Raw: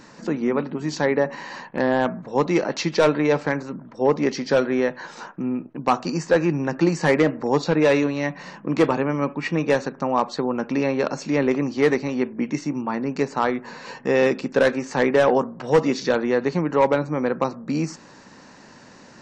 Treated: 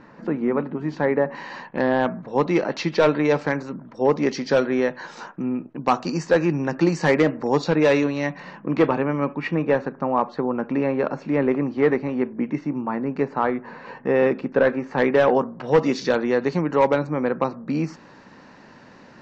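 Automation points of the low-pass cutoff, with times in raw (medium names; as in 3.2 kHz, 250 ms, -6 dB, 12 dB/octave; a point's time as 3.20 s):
2 kHz
from 1.35 s 4.3 kHz
from 3.09 s 7 kHz
from 8.40 s 3.2 kHz
from 9.54 s 2 kHz
from 14.98 s 3.9 kHz
from 15.83 s 6.7 kHz
from 17.07 s 3.5 kHz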